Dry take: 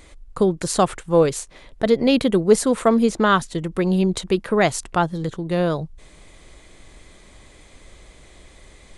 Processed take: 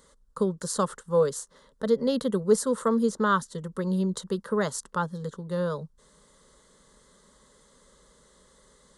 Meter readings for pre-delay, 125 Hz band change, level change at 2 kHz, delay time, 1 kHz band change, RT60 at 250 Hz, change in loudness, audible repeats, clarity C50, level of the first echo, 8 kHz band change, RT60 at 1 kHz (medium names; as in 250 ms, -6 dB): no reverb, -7.5 dB, -9.5 dB, no echo, -7.5 dB, no reverb, -7.5 dB, no echo, no reverb, no echo, -6.0 dB, no reverb